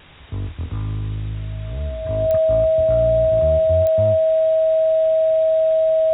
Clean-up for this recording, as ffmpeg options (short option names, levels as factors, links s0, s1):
-af "adeclick=t=4,bandreject=f=640:w=30,afwtdn=0.0089"